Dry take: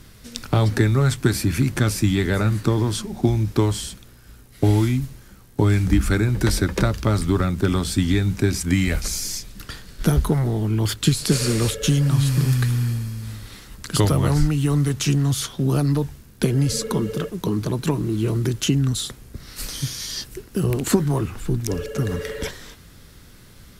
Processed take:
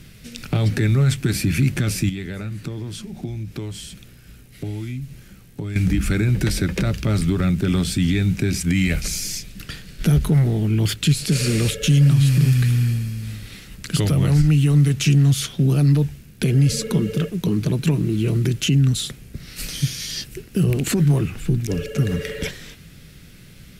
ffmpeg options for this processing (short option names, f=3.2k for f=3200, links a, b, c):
-filter_complex "[0:a]asettb=1/sr,asplit=3[a][b][c];[a]atrim=end=2.094[d];[b]atrim=start=2.09:end=5.76,asetpts=PTS-STARTPTS,afade=t=in:d=0.004:c=qsin,afade=t=out:st=3.666:d=0.004:c=qsin,acompressor=threshold=-38dB:ratio=2:attack=3.2:release=140:knee=1:detection=peak[e];[c]atrim=start=5.756[f];[d][e]acrossfade=d=0.004:c1=hsin:c2=qsin[g];[g][f]acrossfade=d=0.004:c1=qsin:c2=hsin,alimiter=limit=-13dB:level=0:latency=1:release=37,equalizer=f=160:t=o:w=0.67:g=8,equalizer=f=1k:t=o:w=0.67:g=-8,equalizer=f=2.5k:t=o:w=0.67:g=7"